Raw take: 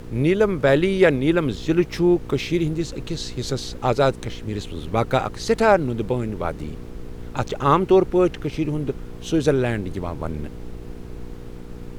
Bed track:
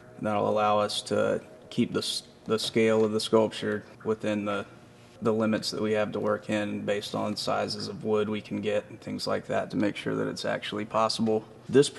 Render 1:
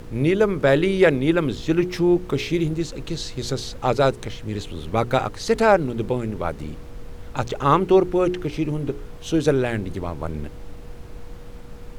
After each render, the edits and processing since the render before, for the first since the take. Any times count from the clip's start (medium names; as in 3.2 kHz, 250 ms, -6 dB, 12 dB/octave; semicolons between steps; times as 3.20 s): de-hum 60 Hz, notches 7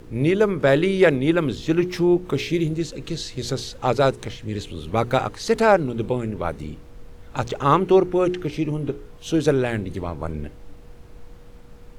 noise print and reduce 6 dB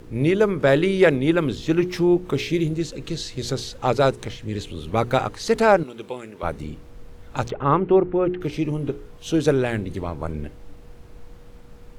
5.83–6.43 s: high-pass 1 kHz 6 dB/octave; 7.50–8.41 s: distance through air 500 m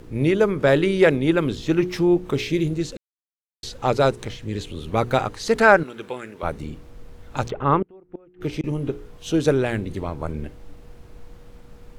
2.97–3.63 s: mute; 5.58–6.32 s: peaking EQ 1.6 kHz +9 dB 0.72 oct; 7.82–8.64 s: inverted gate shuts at -15 dBFS, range -31 dB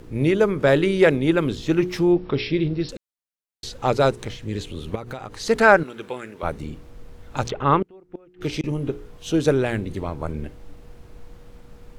2.12–2.89 s: brick-wall FIR low-pass 5.7 kHz; 4.95–5.35 s: compression 8:1, threshold -29 dBFS; 7.45–8.67 s: peaking EQ 4.9 kHz +8 dB 2.2 oct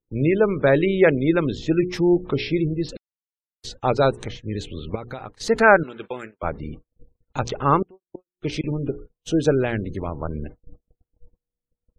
gate -35 dBFS, range -45 dB; spectral gate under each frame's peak -30 dB strong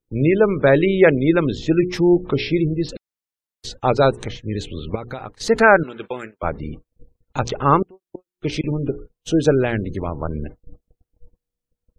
trim +3 dB; peak limiter -1 dBFS, peak gain reduction 2 dB